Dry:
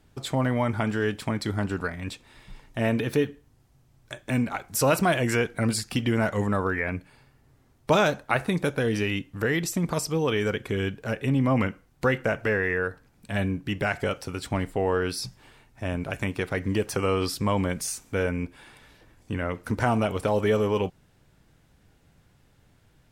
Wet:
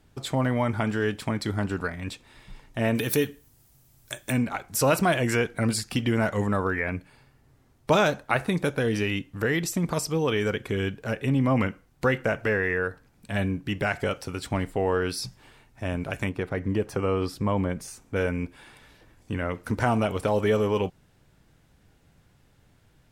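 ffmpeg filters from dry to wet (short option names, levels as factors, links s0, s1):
-filter_complex "[0:a]asplit=3[s0][s1][s2];[s0]afade=t=out:st=2.94:d=0.02[s3];[s1]aemphasis=mode=production:type=75fm,afade=t=in:st=2.94:d=0.02,afade=t=out:st=4.31:d=0.02[s4];[s2]afade=t=in:st=4.31:d=0.02[s5];[s3][s4][s5]amix=inputs=3:normalize=0,asettb=1/sr,asplit=3[s6][s7][s8];[s6]atrim=end=16.294[s9];[s7]atrim=start=16.29:end=18.16,asetpts=PTS-STARTPTS,afade=t=in:d=0.004:c=qsin,afade=t=out:st=1.866:d=0.004:c=qsin,highshelf=f=2100:g=-11[s10];[s8]atrim=start=18.156[s11];[s9][s10]acrossfade=d=0.004:c1=hsin:c2=qsin[s12];[s12][s11]acrossfade=d=0.004:c1=qsin:c2=hsin"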